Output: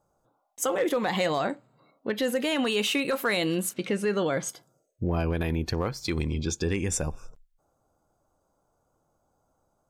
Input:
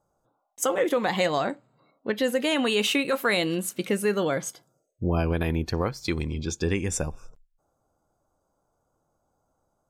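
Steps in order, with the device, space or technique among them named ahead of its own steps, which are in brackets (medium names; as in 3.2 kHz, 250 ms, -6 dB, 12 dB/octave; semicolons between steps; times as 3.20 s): clipper into limiter (hard clipper -15.5 dBFS, distortion -29 dB; peak limiter -19.5 dBFS, peak gain reduction 4 dB); 3.73–4.47 s: low-pass 5.1 kHz -> 9.2 kHz 12 dB/octave; trim +1.5 dB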